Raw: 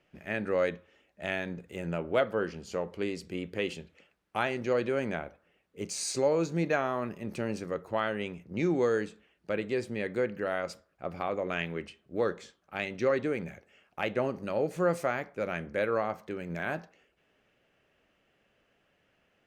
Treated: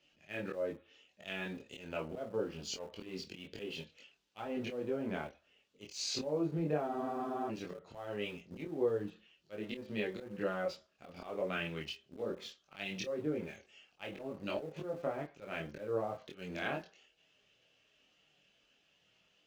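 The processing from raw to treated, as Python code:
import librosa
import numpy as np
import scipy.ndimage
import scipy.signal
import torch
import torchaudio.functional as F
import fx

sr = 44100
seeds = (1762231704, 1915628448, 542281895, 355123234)

p1 = fx.highpass(x, sr, hz=68.0, slope=6)
p2 = fx.env_lowpass_down(p1, sr, base_hz=740.0, full_db=-25.5)
p3 = fx.band_shelf(p2, sr, hz=4400.0, db=13.0, octaves=1.7)
p4 = fx.auto_swell(p3, sr, attack_ms=189.0)
p5 = fx.chorus_voices(p4, sr, voices=6, hz=0.2, base_ms=23, depth_ms=4.0, mix_pct=50)
p6 = fx.doubler(p5, sr, ms=27.0, db=-11.5)
p7 = np.where(np.abs(p6) >= 10.0 ** (-44.5 / 20.0), p6, 0.0)
p8 = p6 + (p7 * librosa.db_to_amplitude(-10.5))
p9 = fx.spec_freeze(p8, sr, seeds[0], at_s=6.9, hold_s=0.59)
y = p9 * librosa.db_to_amplitude(-3.0)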